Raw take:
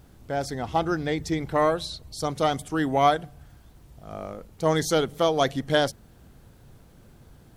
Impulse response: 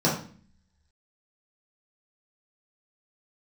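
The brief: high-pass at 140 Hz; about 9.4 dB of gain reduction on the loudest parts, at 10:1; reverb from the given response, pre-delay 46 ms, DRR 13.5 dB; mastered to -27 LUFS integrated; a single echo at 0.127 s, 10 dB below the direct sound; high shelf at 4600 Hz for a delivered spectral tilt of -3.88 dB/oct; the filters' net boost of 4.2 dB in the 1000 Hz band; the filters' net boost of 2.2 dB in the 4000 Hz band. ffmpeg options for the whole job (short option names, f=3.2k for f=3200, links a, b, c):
-filter_complex "[0:a]highpass=140,equalizer=f=1k:t=o:g=6,equalizer=f=4k:t=o:g=4.5,highshelf=f=4.6k:g=-4.5,acompressor=threshold=-20dB:ratio=10,aecho=1:1:127:0.316,asplit=2[a][b];[1:a]atrim=start_sample=2205,adelay=46[c];[b][c]afir=irnorm=-1:irlink=0,volume=-28dB[d];[a][d]amix=inputs=2:normalize=0"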